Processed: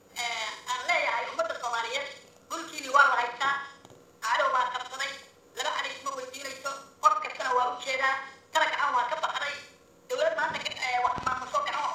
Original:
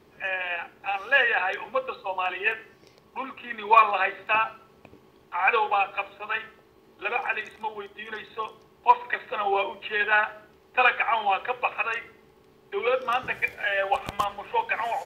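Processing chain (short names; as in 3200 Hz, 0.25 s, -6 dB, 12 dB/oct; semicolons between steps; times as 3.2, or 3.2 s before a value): sample sorter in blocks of 8 samples; flutter echo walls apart 11.1 m, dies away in 0.62 s; varispeed +26%; treble ducked by the level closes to 2000 Hz, closed at -21 dBFS; gain -1.5 dB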